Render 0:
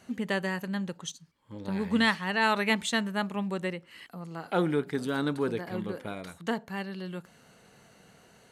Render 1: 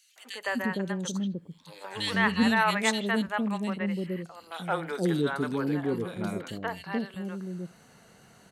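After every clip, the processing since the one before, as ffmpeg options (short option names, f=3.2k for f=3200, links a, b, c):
-filter_complex "[0:a]acrossover=split=500|2700[a][b][c];[b]adelay=160[d];[a]adelay=460[e];[e][d][c]amix=inputs=3:normalize=0,volume=2.5dB"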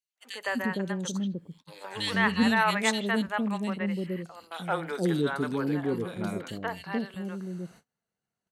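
-af "agate=range=-33dB:threshold=-50dB:ratio=16:detection=peak"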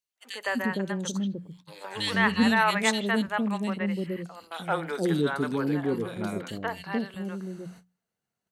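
-af "bandreject=f=60:t=h:w=6,bandreject=f=120:t=h:w=6,bandreject=f=180:t=h:w=6,volume=1.5dB"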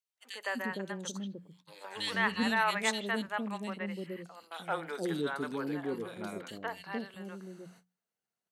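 -af "highpass=f=290:p=1,volume=-5.5dB"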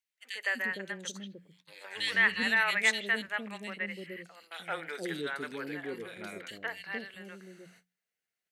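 -af "equalizer=f=125:t=o:w=1:g=-5,equalizer=f=250:t=o:w=1:g=-5,equalizer=f=1k:t=o:w=1:g=-9,equalizer=f=2k:t=o:w=1:g=10"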